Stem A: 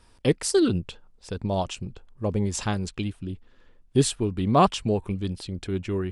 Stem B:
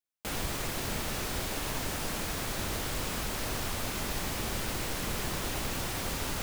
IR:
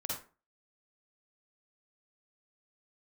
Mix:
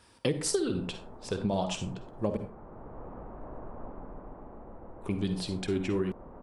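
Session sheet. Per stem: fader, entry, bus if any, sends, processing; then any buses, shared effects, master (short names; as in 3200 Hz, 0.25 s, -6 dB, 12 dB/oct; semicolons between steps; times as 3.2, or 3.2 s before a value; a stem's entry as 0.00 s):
+3.0 dB, 0.00 s, muted 2.37–5.01, send -6 dB, no echo send, flange 1.6 Hz, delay 1.1 ms, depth 5.5 ms, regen +55%; HPF 110 Hz
-6.0 dB, 0.00 s, no send, echo send -5 dB, LPF 1000 Hz 24 dB/oct; bell 92 Hz -7.5 dB 1.8 oct; auto duck -15 dB, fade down 1.15 s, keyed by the first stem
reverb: on, RT60 0.35 s, pre-delay 42 ms
echo: feedback echo 0.145 s, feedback 55%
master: compressor 10:1, threshold -25 dBFS, peak gain reduction 12.5 dB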